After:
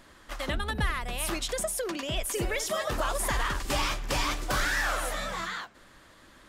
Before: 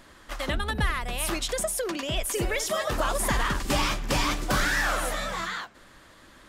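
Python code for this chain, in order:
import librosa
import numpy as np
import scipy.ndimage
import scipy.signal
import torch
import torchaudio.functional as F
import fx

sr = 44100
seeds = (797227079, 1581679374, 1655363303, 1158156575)

y = fx.peak_eq(x, sr, hz=200.0, db=-7.0, octaves=1.2, at=(3.0, 5.15))
y = F.gain(torch.from_numpy(y), -2.5).numpy()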